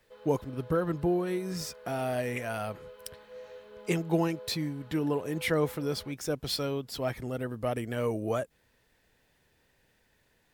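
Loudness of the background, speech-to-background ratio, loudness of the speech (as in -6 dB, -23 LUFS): -50.0 LUFS, 18.0 dB, -32.0 LUFS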